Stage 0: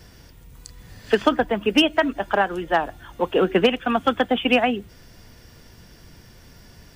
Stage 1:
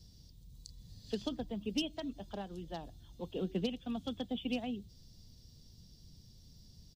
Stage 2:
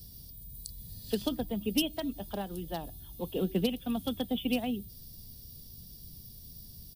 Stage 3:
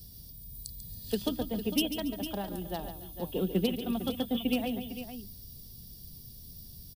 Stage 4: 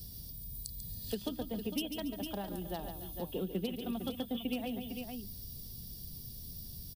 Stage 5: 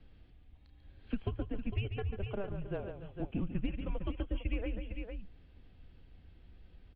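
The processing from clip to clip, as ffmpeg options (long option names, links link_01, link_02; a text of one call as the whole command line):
ffmpeg -i in.wav -af "firequalizer=gain_entry='entry(170,0);entry(330,-10);entry(1500,-26);entry(2600,-16);entry(3900,3);entry(9100,-7)':delay=0.05:min_phase=1,volume=-9dB" out.wav
ffmpeg -i in.wav -af "aexciter=amount=12.4:drive=3.6:freq=9400,volume=6dB" out.wav
ffmpeg -i in.wav -af "aecho=1:1:142|280|454:0.316|0.112|0.282" out.wav
ffmpeg -i in.wav -af "acompressor=threshold=-43dB:ratio=2,volume=2.5dB" out.wav
ffmpeg -i in.wav -af "highpass=frequency=160:width_type=q:width=0.5412,highpass=frequency=160:width_type=q:width=1.307,lowpass=frequency=2600:width_type=q:width=0.5176,lowpass=frequency=2600:width_type=q:width=0.7071,lowpass=frequency=2600:width_type=q:width=1.932,afreqshift=-200,volume=3dB" out.wav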